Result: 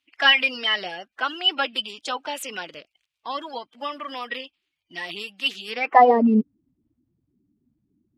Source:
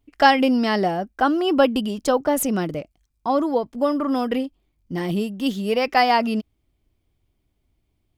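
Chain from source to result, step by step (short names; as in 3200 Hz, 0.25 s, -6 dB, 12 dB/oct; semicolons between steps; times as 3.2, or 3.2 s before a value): bin magnitudes rounded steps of 30 dB; band-pass sweep 2800 Hz -> 240 Hz, 5.71–6.25; gain +9 dB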